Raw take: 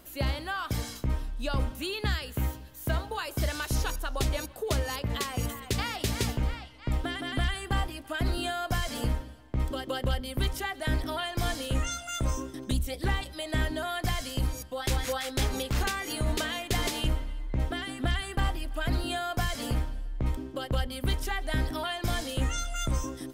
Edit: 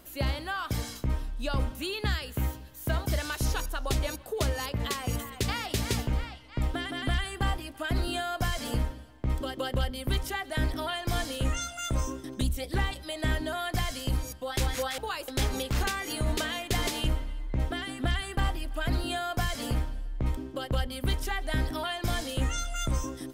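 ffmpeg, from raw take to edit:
-filter_complex "[0:a]asplit=4[a][b][c][d];[a]atrim=end=3.062[e];[b]atrim=start=3.358:end=15.282[f];[c]atrim=start=3.058:end=3.362[g];[d]atrim=start=15.278[h];[e][f]acrossfade=d=0.004:c1=hsin:c2=hsin[i];[i][g]acrossfade=d=0.004:c1=hsin:c2=hsin[j];[j][h]acrossfade=d=0.004:c1=hsin:c2=hsin"

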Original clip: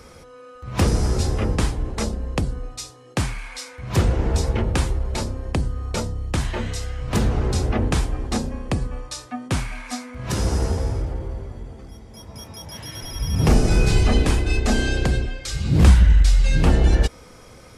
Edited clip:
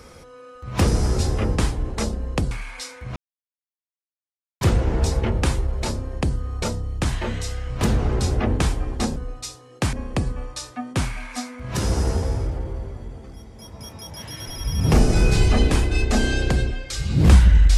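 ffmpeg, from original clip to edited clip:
-filter_complex "[0:a]asplit=5[a][b][c][d][e];[a]atrim=end=2.512[f];[b]atrim=start=3.278:end=3.93,asetpts=PTS-STARTPTS,afade=t=out:st=0.648:d=0.004:c=hsin,apad=pad_dur=1.45[g];[c]atrim=start=3.93:end=8.482,asetpts=PTS-STARTPTS,afade=t=in:d=0.004:c=hsin[h];[d]atrim=start=2.508:end=3.282[i];[e]atrim=start=8.478[j];[g][h]concat=n=2:v=0:a=1[k];[f][k]acrossfade=d=0.004:c1=hsin:c2=hsin[l];[l][i]acrossfade=d=0.004:c1=hsin:c2=hsin[m];[m][j]acrossfade=d=0.004:c1=hsin:c2=hsin"

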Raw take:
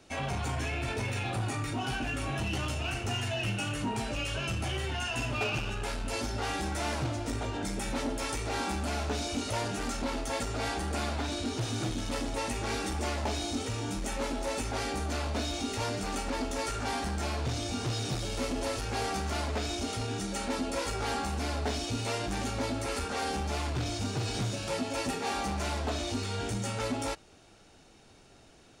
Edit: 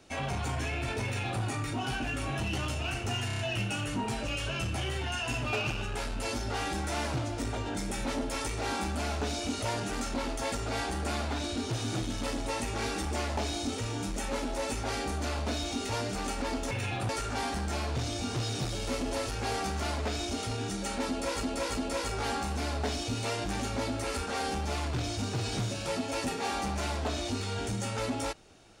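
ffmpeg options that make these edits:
-filter_complex "[0:a]asplit=9[a][b][c][d][e][f][g][h][i];[a]atrim=end=3.302[j];[b]atrim=start=3.268:end=3.302[k];[c]atrim=start=3.268:end=3.302[l];[d]atrim=start=3.268:end=3.302[m];[e]atrim=start=3.268:end=16.592[n];[f]atrim=start=1.038:end=1.422[o];[g]atrim=start=16.588:end=20.932[p];[h]atrim=start=20.588:end=20.932[q];[i]atrim=start=20.588[r];[j][k]acrossfade=d=0.004:c1=hsin:c2=hsin[s];[s][l]acrossfade=d=0.004:c1=hsin:c2=hsin[t];[t][m]acrossfade=d=0.004:c1=hsin:c2=hsin[u];[u][n]acrossfade=d=0.004:c1=hsin:c2=hsin[v];[v][o]acrossfade=d=0.004:c1=hsin:c2=hsin[w];[w][p]acrossfade=d=0.004:c1=hsin:c2=hsin[x];[x][q]acrossfade=d=0.004:c1=hsin:c2=hsin[y];[y][r]acrossfade=d=0.004:c1=hsin:c2=hsin"

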